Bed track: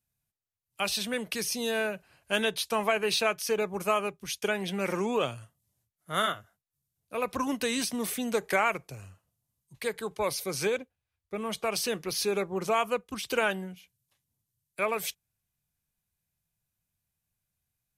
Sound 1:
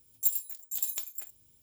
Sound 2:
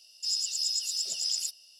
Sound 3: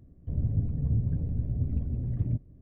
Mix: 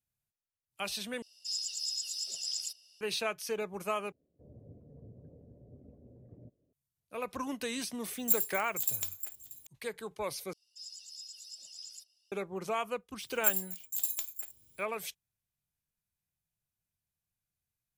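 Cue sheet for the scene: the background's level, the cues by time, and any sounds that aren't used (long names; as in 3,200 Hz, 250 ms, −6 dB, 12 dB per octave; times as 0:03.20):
bed track −7 dB
0:01.22: overwrite with 2 −6 dB
0:04.12: overwrite with 3 −5.5 dB + resonant band-pass 520 Hz, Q 2.6
0:08.05: mix in 1 −0.5 dB + single-tap delay 634 ms −18 dB
0:10.53: overwrite with 2 −13 dB + flanger whose copies keep moving one way rising 1.7 Hz
0:13.21: mix in 1 −1 dB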